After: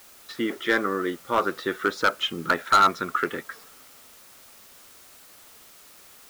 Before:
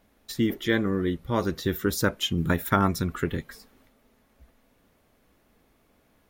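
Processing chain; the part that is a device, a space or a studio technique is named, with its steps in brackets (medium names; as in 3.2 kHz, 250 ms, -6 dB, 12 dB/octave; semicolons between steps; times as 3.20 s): drive-through speaker (band-pass 420–3000 Hz; peaking EQ 1.3 kHz +11 dB 0.37 oct; hard clipper -17 dBFS, distortion -8 dB; white noise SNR 23 dB); trim +4.5 dB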